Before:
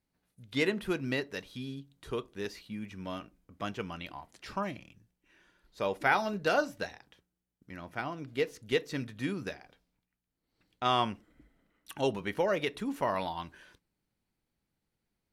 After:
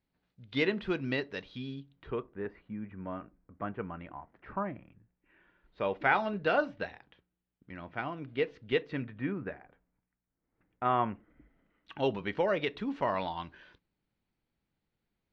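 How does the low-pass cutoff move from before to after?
low-pass 24 dB/octave
1.80 s 4.4 kHz
2.32 s 1.8 kHz
4.78 s 1.8 kHz
5.99 s 3.4 kHz
8.77 s 3.4 kHz
9.37 s 2 kHz
11.03 s 2 kHz
12.20 s 4.2 kHz

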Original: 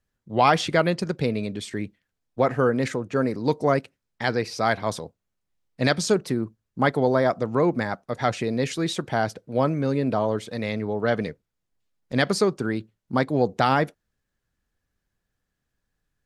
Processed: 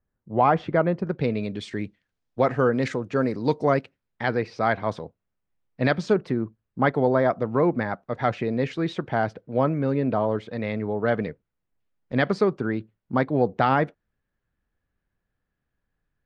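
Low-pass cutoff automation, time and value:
1.04 s 1.3 kHz
1.26 s 3.3 kHz
1.83 s 5.4 kHz
3.47 s 5.4 kHz
4.32 s 2.5 kHz

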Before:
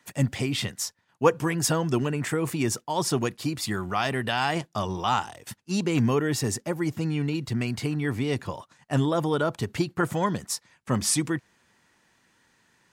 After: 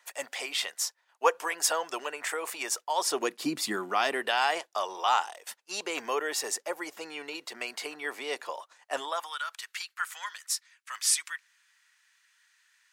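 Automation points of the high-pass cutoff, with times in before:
high-pass 24 dB/octave
2.97 s 560 Hz
3.53 s 220 Hz
4.61 s 500 Hz
8.96 s 500 Hz
9.38 s 1.4 kHz

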